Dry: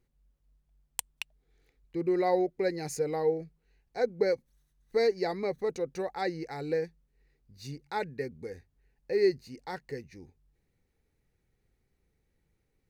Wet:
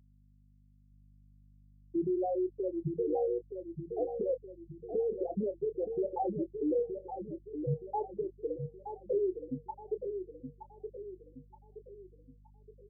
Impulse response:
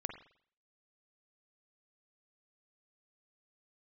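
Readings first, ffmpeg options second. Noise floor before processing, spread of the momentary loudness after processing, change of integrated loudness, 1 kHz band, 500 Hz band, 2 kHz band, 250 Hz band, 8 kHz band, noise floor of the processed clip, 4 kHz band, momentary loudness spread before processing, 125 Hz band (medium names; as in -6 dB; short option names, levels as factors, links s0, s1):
-76 dBFS, 17 LU, -4.0 dB, -3.5 dB, -3.0 dB, under -40 dB, -0.5 dB, under -35 dB, -63 dBFS, under -35 dB, 16 LU, +1.5 dB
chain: -filter_complex "[0:a]acompressor=threshold=0.0282:ratio=6,asuperstop=centerf=2900:order=12:qfactor=1,equalizer=f=230:w=0.34:g=5.5,afftfilt=real='re*gte(hypot(re,im),0.178)':imag='im*gte(hypot(re,im),0.178)':win_size=1024:overlap=0.75,alimiter=level_in=2.51:limit=0.0631:level=0:latency=1:release=87,volume=0.398,aeval=exprs='val(0)+0.000447*(sin(2*PI*50*n/s)+sin(2*PI*2*50*n/s)/2+sin(2*PI*3*50*n/s)/3+sin(2*PI*4*50*n/s)/4+sin(2*PI*5*50*n/s)/5)':c=same,asplit=2[s0][s1];[s1]adelay=27,volume=0.266[s2];[s0][s2]amix=inputs=2:normalize=0,adynamicequalizer=threshold=0.00447:dfrequency=350:dqfactor=2.2:tfrequency=350:tqfactor=2.2:attack=5:release=100:ratio=0.375:range=1.5:mode=cutabove:tftype=bell,asplit=2[s3][s4];[s4]adelay=921,lowpass=f=1200:p=1,volume=0.447,asplit=2[s5][s6];[s6]adelay=921,lowpass=f=1200:p=1,volume=0.47,asplit=2[s7][s8];[s8]adelay=921,lowpass=f=1200:p=1,volume=0.47,asplit=2[s9][s10];[s10]adelay=921,lowpass=f=1200:p=1,volume=0.47,asplit=2[s11][s12];[s12]adelay=921,lowpass=f=1200:p=1,volume=0.47,asplit=2[s13][s14];[s14]adelay=921,lowpass=f=1200:p=1,volume=0.47[s15];[s3][s5][s7][s9][s11][s13][s15]amix=inputs=7:normalize=0,volume=2"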